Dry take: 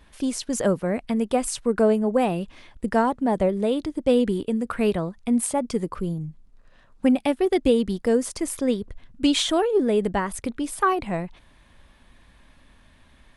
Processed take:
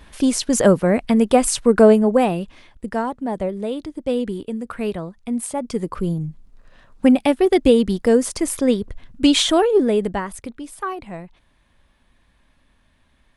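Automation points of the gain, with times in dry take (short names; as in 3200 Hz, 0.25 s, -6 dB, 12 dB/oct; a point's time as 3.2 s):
1.91 s +8 dB
2.85 s -2.5 dB
5.45 s -2.5 dB
6.09 s +5.5 dB
9.73 s +5.5 dB
10.65 s -6 dB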